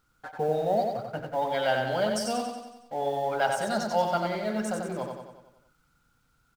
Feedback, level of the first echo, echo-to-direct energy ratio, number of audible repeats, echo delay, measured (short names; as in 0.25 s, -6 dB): 55%, -4.5 dB, -3.0 dB, 6, 92 ms